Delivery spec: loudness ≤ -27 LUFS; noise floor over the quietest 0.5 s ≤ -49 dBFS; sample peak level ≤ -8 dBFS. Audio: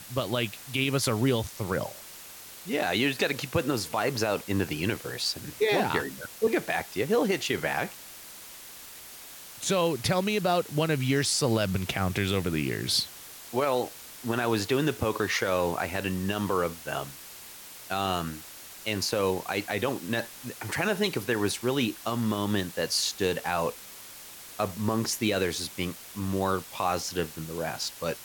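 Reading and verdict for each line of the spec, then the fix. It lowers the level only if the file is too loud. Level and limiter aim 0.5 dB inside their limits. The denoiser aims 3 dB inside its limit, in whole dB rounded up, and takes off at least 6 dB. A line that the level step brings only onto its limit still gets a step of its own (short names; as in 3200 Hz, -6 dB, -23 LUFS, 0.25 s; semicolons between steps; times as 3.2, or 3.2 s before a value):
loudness -28.5 LUFS: OK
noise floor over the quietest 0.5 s -46 dBFS: fail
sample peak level -14.0 dBFS: OK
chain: denoiser 6 dB, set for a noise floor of -46 dBFS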